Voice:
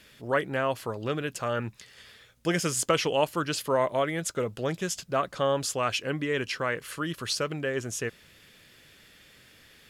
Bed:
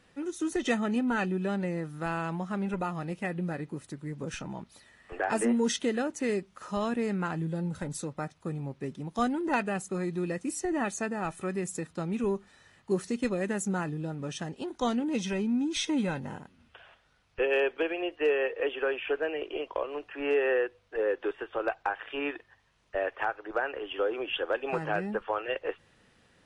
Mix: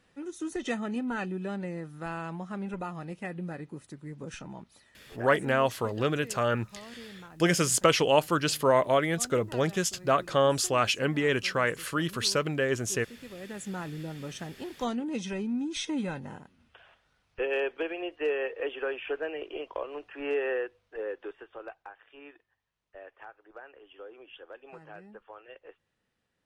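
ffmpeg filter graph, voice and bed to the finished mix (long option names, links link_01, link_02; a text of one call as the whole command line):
ffmpeg -i stem1.wav -i stem2.wav -filter_complex "[0:a]adelay=4950,volume=2.5dB[link_01];[1:a]volume=10dB,afade=type=out:start_time=4.81:duration=0.63:silence=0.223872,afade=type=in:start_time=13.26:duration=0.74:silence=0.199526,afade=type=out:start_time=20.35:duration=1.58:silence=0.199526[link_02];[link_01][link_02]amix=inputs=2:normalize=0" out.wav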